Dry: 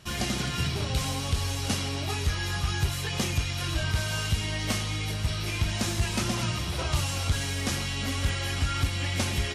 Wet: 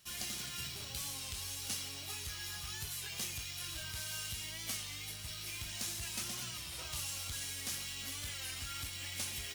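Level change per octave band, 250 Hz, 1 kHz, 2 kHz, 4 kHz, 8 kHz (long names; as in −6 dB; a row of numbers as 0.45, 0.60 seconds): −21.0, −17.0, −12.5, −9.0, −5.0 decibels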